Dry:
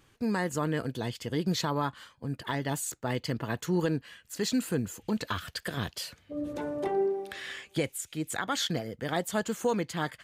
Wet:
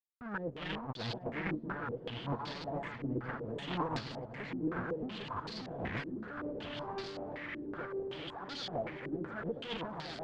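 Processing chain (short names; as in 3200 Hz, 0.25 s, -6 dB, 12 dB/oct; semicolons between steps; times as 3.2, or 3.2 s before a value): regenerating reverse delay 0.535 s, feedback 50%, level -1 dB; fuzz box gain 51 dB, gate -48 dBFS; gate -11 dBFS, range -37 dB; air absorption 54 m; swung echo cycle 1.347 s, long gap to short 1.5:1, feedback 53%, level -11 dB; stepped low-pass 5.3 Hz 330–4500 Hz; gain +4.5 dB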